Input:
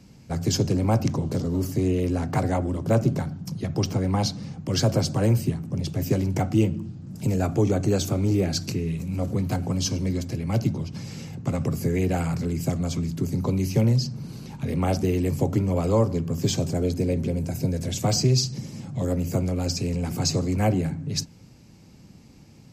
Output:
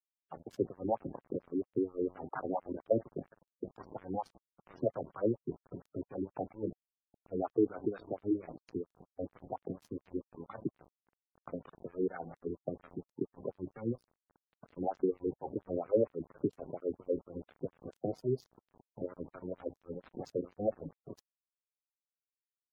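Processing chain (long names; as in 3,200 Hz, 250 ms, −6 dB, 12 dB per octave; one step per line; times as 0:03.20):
LFO wah 4.3 Hz 330–1,400 Hz, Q 2.9
on a send: bucket-brigade delay 411 ms, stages 2,048, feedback 35%, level −21.5 dB
on the sum: dead-zone distortion −42 dBFS
gate on every frequency bin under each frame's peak −15 dB strong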